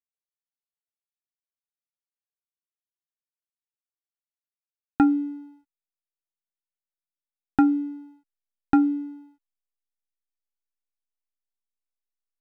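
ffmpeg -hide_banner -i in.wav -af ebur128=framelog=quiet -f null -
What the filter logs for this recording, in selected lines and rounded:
Integrated loudness:
  I:         -23.9 LUFS
  Threshold: -35.9 LUFS
Loudness range:
  LRA:         3.0 LU
  Threshold: -49.8 LUFS
  LRA low:   -30.7 LUFS
  LRA high:  -27.7 LUFS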